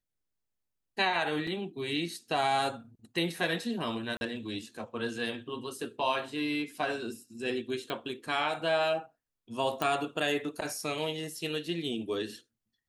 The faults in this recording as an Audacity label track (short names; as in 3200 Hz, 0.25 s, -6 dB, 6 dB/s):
1.470000	1.470000	gap 4.1 ms
4.170000	4.210000	gap 41 ms
7.900000	7.900000	pop -22 dBFS
9.820000	9.820000	pop -16 dBFS